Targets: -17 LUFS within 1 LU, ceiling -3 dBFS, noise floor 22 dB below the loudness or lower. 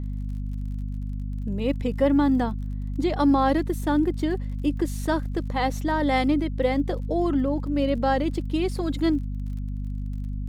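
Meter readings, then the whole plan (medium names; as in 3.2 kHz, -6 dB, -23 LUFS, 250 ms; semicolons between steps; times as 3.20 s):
tick rate 34 per s; hum 50 Hz; highest harmonic 250 Hz; hum level -27 dBFS; loudness -25.5 LUFS; peak level -10.0 dBFS; loudness target -17.0 LUFS
-> de-click; hum notches 50/100/150/200/250 Hz; trim +8.5 dB; peak limiter -3 dBFS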